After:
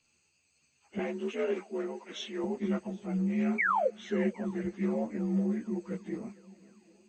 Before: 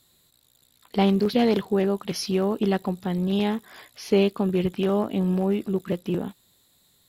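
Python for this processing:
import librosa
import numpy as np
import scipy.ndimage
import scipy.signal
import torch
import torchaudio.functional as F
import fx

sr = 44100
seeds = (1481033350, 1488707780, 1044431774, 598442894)

p1 = fx.partial_stretch(x, sr, pct=85)
p2 = fx.highpass(p1, sr, hz=280.0, slope=24, at=(0.98, 2.44))
p3 = fx.spec_paint(p2, sr, seeds[0], shape='fall', start_s=3.58, length_s=0.31, low_hz=440.0, high_hz=2400.0, level_db=-19.0)
p4 = p3 + fx.echo_swing(p3, sr, ms=759, ratio=1.5, feedback_pct=42, wet_db=-23.0, dry=0)
p5 = fx.ensemble(p4, sr)
y = p5 * librosa.db_to_amplitude(-5.0)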